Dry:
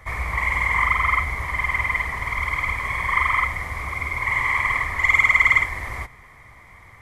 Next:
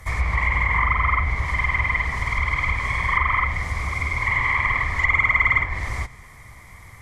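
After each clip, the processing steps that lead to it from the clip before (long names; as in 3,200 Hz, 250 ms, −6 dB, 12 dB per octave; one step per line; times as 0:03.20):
bass and treble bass +6 dB, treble +11 dB
treble cut that deepens with the level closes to 2,000 Hz, closed at −14.5 dBFS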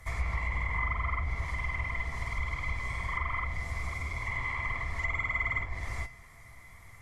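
tuned comb filter 680 Hz, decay 0.24 s, harmonics all, mix 80%
dynamic equaliser 1,800 Hz, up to −7 dB, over −42 dBFS, Q 0.78
level +3.5 dB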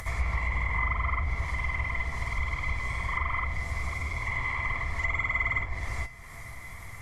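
upward compression, threshold −36 dBFS
level +3 dB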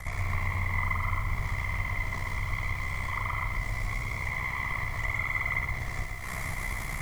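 camcorder AGC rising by 52 dB per second
ring modulation 32 Hz
feedback echo at a low word length 121 ms, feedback 35%, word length 8 bits, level −4 dB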